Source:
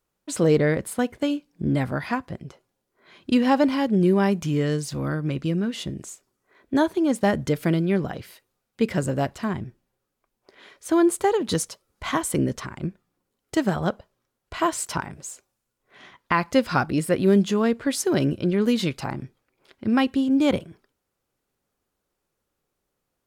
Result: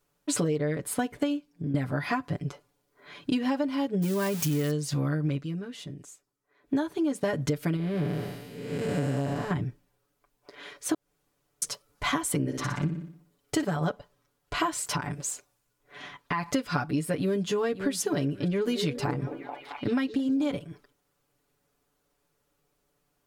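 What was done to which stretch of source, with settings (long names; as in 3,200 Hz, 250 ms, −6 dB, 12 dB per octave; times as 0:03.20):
0:01.31–0:01.74: fade out, to −18.5 dB
0:04.02–0:04.71: spike at every zero crossing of −18.5 dBFS
0:05.34–0:06.74: duck −13.5 dB, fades 0.12 s
0:07.76–0:09.51: spectrum smeared in time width 422 ms
0:10.94–0:11.62: fill with room tone
0:12.38–0:13.64: flutter between parallel walls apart 10.2 metres, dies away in 0.53 s
0:14.78–0:16.52: downward compressor 3 to 1, threshold −30 dBFS
0:17.20–0:17.93: delay throw 540 ms, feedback 30%, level −15.5 dB
0:18.44–0:20.55: echo through a band-pass that steps 218 ms, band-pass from 390 Hz, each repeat 0.7 octaves, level −6 dB
whole clip: comb filter 6.9 ms, depth 87%; downward compressor 12 to 1, threshold −26 dBFS; level +2 dB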